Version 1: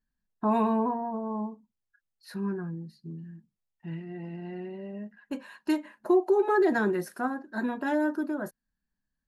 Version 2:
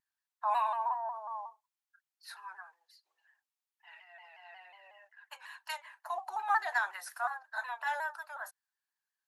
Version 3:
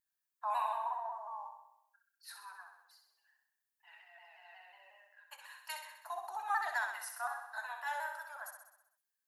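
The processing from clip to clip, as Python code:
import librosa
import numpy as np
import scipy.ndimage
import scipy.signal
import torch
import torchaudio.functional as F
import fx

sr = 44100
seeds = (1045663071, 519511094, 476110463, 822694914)

y1 = scipy.signal.sosfilt(scipy.signal.butter(8, 750.0, 'highpass', fs=sr, output='sos'), x)
y1 = fx.vibrato_shape(y1, sr, shape='saw_down', rate_hz=5.5, depth_cents=100.0)
y2 = fx.high_shelf(y1, sr, hz=8100.0, db=11.5)
y2 = fx.echo_feedback(y2, sr, ms=64, feedback_pct=59, wet_db=-6.5)
y2 = y2 * 10.0 ** (-5.5 / 20.0)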